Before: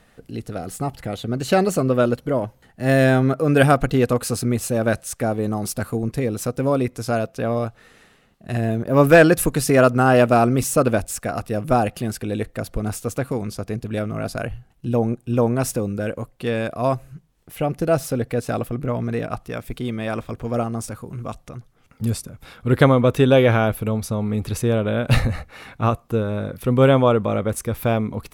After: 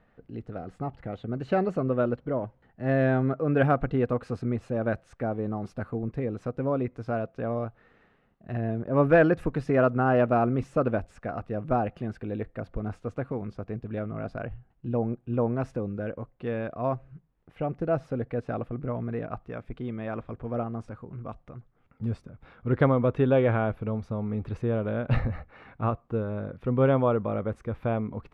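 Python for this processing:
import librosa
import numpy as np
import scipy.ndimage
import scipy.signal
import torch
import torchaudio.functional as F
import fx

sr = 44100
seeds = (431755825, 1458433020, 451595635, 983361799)

y = scipy.signal.sosfilt(scipy.signal.butter(2, 1800.0, 'lowpass', fs=sr, output='sos'), x)
y = y * librosa.db_to_amplitude(-7.5)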